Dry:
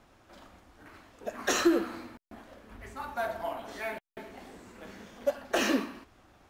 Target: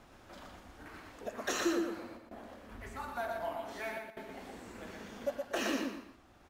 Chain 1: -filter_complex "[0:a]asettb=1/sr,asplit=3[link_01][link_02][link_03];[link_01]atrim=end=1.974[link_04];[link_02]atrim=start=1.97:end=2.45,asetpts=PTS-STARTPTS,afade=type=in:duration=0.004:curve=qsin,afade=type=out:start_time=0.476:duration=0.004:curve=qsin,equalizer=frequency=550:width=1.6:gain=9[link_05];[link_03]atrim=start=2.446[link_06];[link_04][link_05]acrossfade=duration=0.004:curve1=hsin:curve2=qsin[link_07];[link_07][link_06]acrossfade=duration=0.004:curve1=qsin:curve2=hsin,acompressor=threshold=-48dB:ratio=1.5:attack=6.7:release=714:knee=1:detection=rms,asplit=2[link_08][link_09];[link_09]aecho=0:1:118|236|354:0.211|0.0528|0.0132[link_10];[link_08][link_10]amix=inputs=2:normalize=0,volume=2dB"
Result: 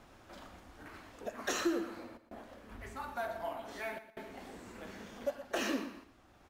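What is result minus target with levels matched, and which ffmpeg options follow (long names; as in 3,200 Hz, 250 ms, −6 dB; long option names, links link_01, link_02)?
echo-to-direct −9 dB
-filter_complex "[0:a]asettb=1/sr,asplit=3[link_01][link_02][link_03];[link_01]atrim=end=1.974[link_04];[link_02]atrim=start=1.97:end=2.45,asetpts=PTS-STARTPTS,afade=type=in:duration=0.004:curve=qsin,afade=type=out:start_time=0.476:duration=0.004:curve=qsin,equalizer=frequency=550:width=1.6:gain=9[link_05];[link_03]atrim=start=2.446[link_06];[link_04][link_05]acrossfade=duration=0.004:curve1=hsin:curve2=qsin[link_07];[link_07][link_06]acrossfade=duration=0.004:curve1=qsin:curve2=hsin,acompressor=threshold=-48dB:ratio=1.5:attack=6.7:release=714:knee=1:detection=rms,asplit=2[link_08][link_09];[link_09]aecho=0:1:118|236|354:0.596|0.149|0.0372[link_10];[link_08][link_10]amix=inputs=2:normalize=0,volume=2dB"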